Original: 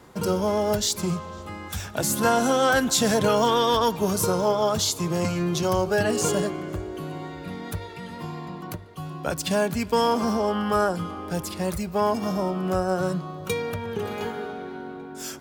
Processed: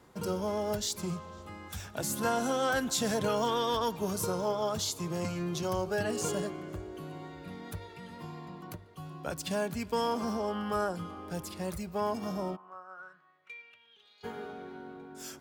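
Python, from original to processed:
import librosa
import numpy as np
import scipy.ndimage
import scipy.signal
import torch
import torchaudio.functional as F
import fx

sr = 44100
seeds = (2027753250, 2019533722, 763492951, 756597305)

y = fx.bandpass_q(x, sr, hz=fx.line((12.55, 910.0), (14.23, 4300.0)), q=6.3, at=(12.55, 14.23), fade=0.02)
y = y * librosa.db_to_amplitude(-9.0)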